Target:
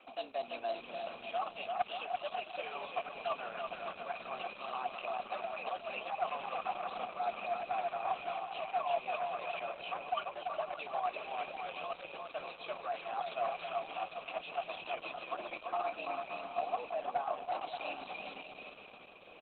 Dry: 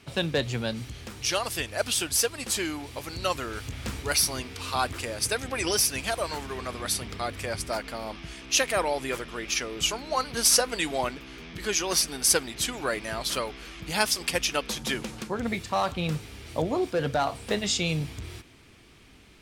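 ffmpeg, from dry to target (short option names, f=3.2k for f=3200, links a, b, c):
-filter_complex "[0:a]areverse,acompressor=threshold=-34dB:ratio=5,areverse,afreqshift=120,acrossover=split=210|770|6200[a][b][c][d];[a]acompressor=threshold=-52dB:ratio=4[e];[b]acompressor=threshold=-50dB:ratio=4[f];[c]acompressor=threshold=-39dB:ratio=4[g];[d]acompressor=threshold=-44dB:ratio=4[h];[e][f][g][h]amix=inputs=4:normalize=0,asplit=3[i][j][k];[i]bandpass=f=730:t=q:w=8,volume=0dB[l];[j]bandpass=f=1.09k:t=q:w=8,volume=-6dB[m];[k]bandpass=f=2.44k:t=q:w=8,volume=-9dB[n];[l][m][n]amix=inputs=3:normalize=0,aeval=exprs='clip(val(0),-1,0.00794)':c=same,highpass=130,lowpass=7.9k,asplit=2[o][p];[p]aecho=0:1:340|578|744.6|861.2|942.9:0.631|0.398|0.251|0.158|0.1[q];[o][q]amix=inputs=2:normalize=0,volume=14dB" -ar 48000 -c:a libopus -b:a 8k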